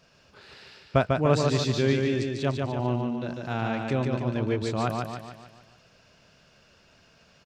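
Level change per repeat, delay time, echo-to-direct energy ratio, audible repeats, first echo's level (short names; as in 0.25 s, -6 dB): -6.0 dB, 0.147 s, -2.5 dB, 6, -3.5 dB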